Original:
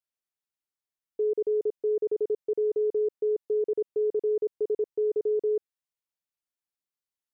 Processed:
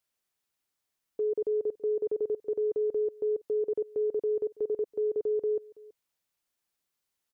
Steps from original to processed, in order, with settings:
dynamic equaliser 380 Hz, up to −3 dB, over −37 dBFS, Q 3
brickwall limiter −33.5 dBFS, peak gain reduction 10.5 dB
single-tap delay 329 ms −22 dB
level +9 dB

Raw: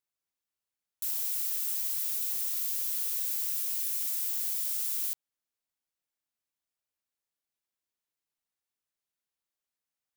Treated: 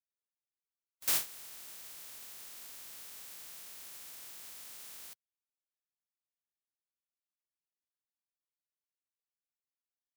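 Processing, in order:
compressing power law on the bin magnitudes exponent 0.19
noise gate with hold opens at −19 dBFS
level +4 dB

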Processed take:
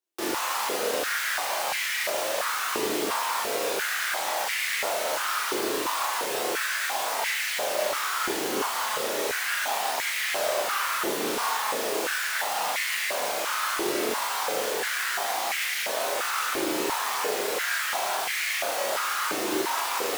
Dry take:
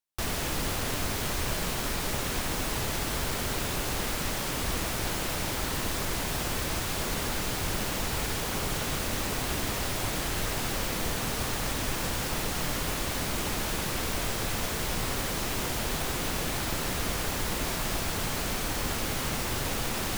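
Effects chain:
flutter between parallel walls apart 6.7 metres, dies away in 0.51 s
multi-voice chorus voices 4, 0.12 Hz, delay 27 ms, depth 2.9 ms
high-pass on a step sequencer 2.9 Hz 360–2,000 Hz
level +3 dB

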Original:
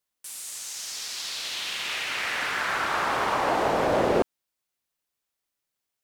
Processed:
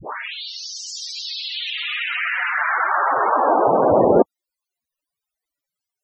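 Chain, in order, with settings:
turntable start at the beginning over 0.88 s
spectral peaks only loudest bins 32
level +9 dB

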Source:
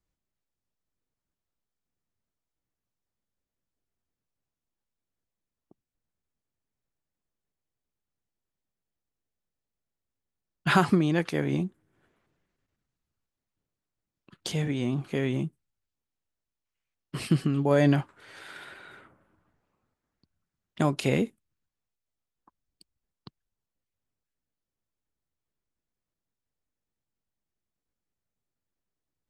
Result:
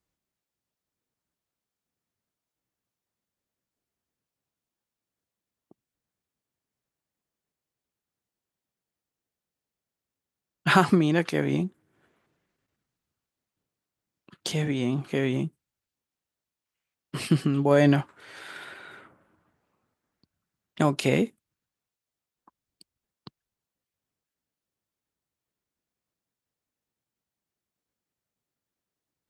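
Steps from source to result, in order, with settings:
high-pass filter 120 Hz 6 dB per octave
level +3 dB

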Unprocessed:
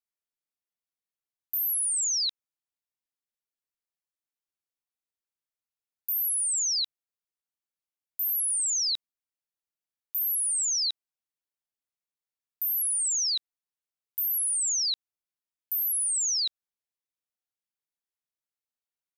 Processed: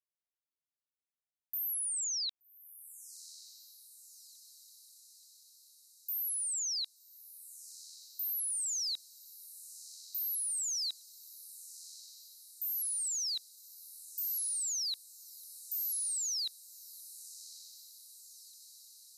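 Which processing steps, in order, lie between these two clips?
feedback delay with all-pass diffusion 1,186 ms, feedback 64%, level −16 dB
level −8 dB

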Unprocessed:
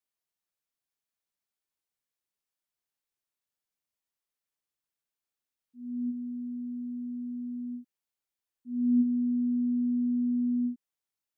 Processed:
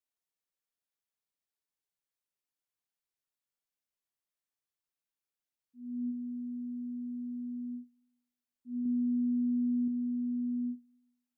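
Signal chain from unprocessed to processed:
brickwall limiter −27.5 dBFS, peak gain reduction 9.5 dB
0:08.83–0:09.88: double-tracking delay 24 ms −4 dB
rectangular room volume 1,000 cubic metres, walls furnished, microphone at 0.3 metres
level −4.5 dB

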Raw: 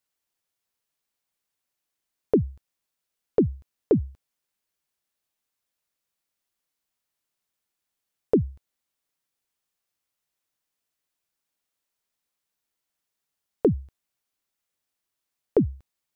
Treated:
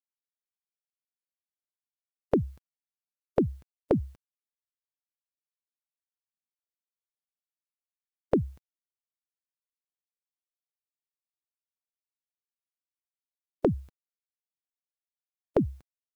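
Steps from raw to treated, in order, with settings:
ceiling on every frequency bin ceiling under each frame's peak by 14 dB
bit reduction 11 bits
level −3.5 dB

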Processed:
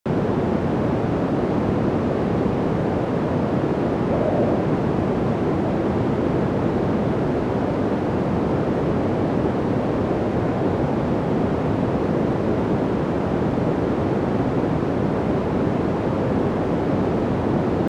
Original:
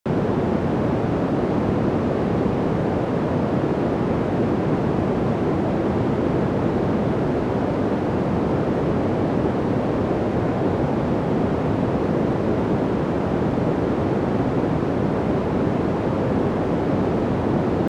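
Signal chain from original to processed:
0:04.12–0:04.61: parametric band 610 Hz +9 dB 0.37 octaves

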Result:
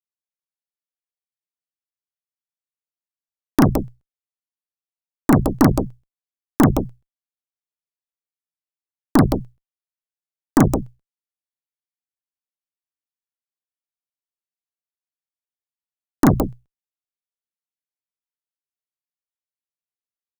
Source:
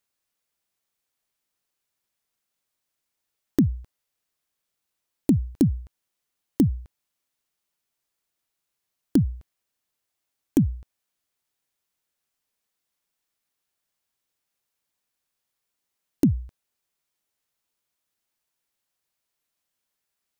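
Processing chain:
loudspeakers that aren't time-aligned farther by 12 metres −1 dB, 57 metres −5 dB
harmonic generator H 3 −19 dB, 7 −20 dB, 8 −16 dB, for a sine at −7 dBFS
level +5 dB

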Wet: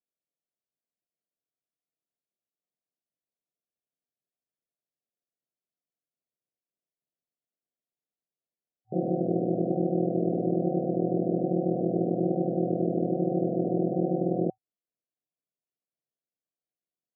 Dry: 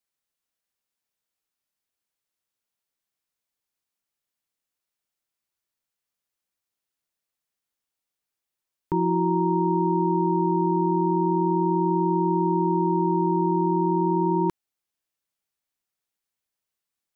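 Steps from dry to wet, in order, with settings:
sub-harmonics by changed cycles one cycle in 2, muted
brick-wall band-pass 110–760 Hz

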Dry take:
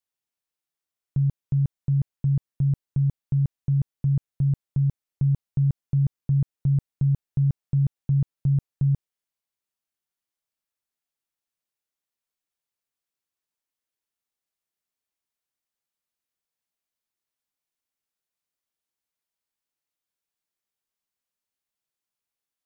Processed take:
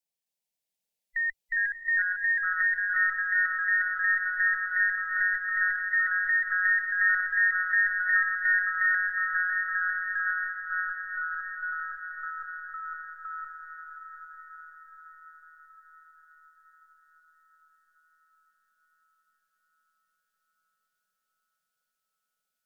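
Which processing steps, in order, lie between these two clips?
frequency inversion band by band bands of 2,000 Hz
phaser with its sweep stopped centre 350 Hz, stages 6
delay with pitch and tempo change per echo 263 ms, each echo −2 semitones, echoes 3
feedback delay with all-pass diffusion 666 ms, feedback 61%, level −5 dB

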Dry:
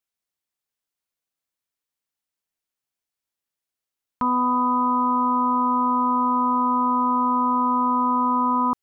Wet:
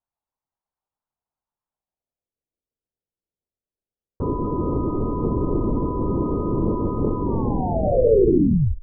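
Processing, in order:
turntable brake at the end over 1.59 s
speech leveller
hum removal 319.9 Hz, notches 4
linear-prediction vocoder at 8 kHz whisper
low-pass filter sweep 940 Hz → 470 Hz, 0:01.71–0:02.30

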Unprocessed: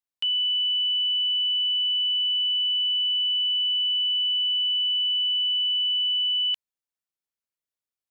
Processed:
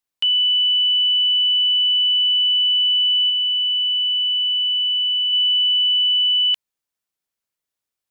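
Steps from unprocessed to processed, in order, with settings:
0:03.28–0:05.33: double-tracking delay 17 ms −7.5 dB
level +7 dB

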